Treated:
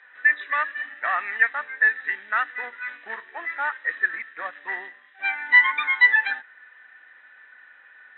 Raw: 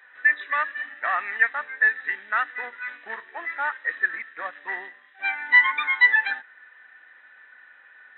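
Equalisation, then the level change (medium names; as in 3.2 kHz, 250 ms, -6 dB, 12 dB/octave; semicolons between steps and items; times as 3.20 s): distance through air 220 m; treble shelf 2.9 kHz +9.5 dB; 0.0 dB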